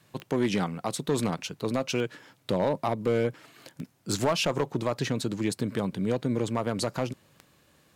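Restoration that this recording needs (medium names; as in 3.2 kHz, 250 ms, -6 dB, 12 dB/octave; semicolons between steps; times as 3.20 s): clip repair -18 dBFS; de-click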